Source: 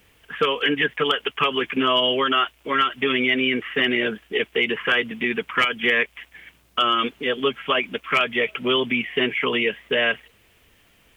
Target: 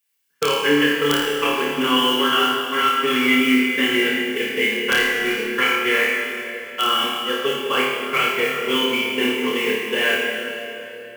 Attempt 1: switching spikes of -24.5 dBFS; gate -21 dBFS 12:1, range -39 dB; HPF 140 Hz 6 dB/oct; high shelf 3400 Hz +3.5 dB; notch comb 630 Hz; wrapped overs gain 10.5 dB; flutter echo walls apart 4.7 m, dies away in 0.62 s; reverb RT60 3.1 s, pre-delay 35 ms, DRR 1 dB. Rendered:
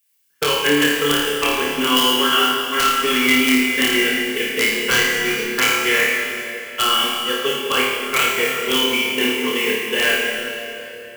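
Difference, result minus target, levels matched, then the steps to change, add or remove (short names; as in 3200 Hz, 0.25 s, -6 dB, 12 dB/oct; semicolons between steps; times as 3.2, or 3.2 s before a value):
8000 Hz band +7.0 dB
change: high shelf 3400 Hz -4 dB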